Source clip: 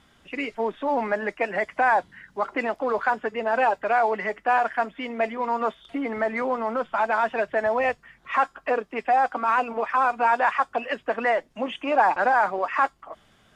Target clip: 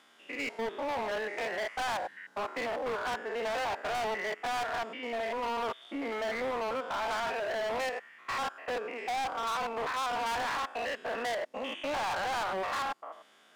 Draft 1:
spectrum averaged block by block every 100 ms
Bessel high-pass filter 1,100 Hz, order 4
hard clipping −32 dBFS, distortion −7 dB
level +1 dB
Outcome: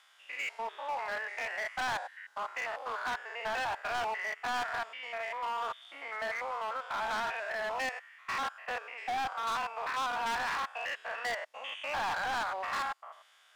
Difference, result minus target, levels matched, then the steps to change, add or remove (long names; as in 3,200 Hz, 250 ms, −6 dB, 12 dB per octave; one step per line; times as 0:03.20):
500 Hz band −5.5 dB
change: Bessel high-pass filter 390 Hz, order 4